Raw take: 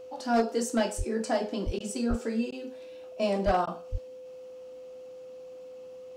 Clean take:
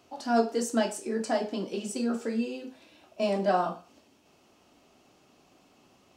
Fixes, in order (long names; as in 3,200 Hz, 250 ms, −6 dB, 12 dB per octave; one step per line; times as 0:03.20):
clipped peaks rebuilt −18 dBFS
notch filter 510 Hz, Q 30
high-pass at the plosives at 0:00.97/0:01.65/0:02.09/0:03.45/0:03.91
repair the gap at 0:01.79/0:02.51/0:03.66, 11 ms